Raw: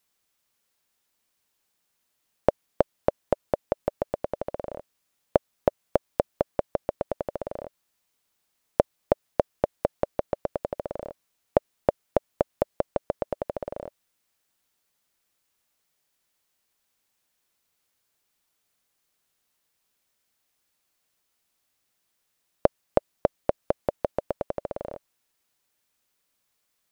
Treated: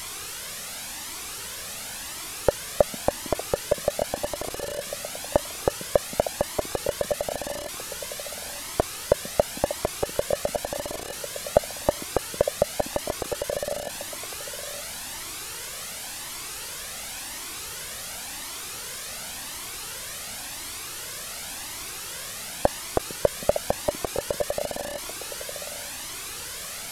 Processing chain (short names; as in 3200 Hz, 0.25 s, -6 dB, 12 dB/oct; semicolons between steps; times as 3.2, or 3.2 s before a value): delta modulation 64 kbps, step -30 dBFS; delay with a stepping band-pass 0.454 s, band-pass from 220 Hz, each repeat 1.4 oct, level -6.5 dB; cascading flanger rising 0.92 Hz; gain +6 dB